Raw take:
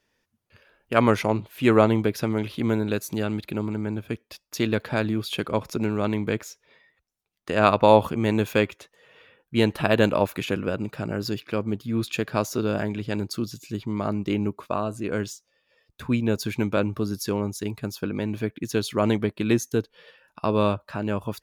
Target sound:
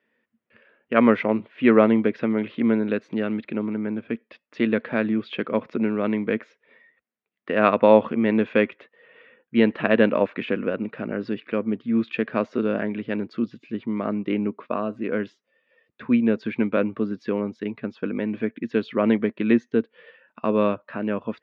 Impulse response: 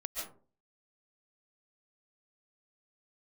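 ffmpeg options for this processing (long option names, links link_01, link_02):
-af "highpass=220,equalizer=frequency=230:width_type=q:width=4:gain=9,equalizer=frequency=490:width_type=q:width=4:gain=4,equalizer=frequency=840:width_type=q:width=4:gain=-5,equalizer=frequency=1900:width_type=q:width=4:gain=5,lowpass=frequency=2900:width=0.5412,lowpass=frequency=2900:width=1.3066"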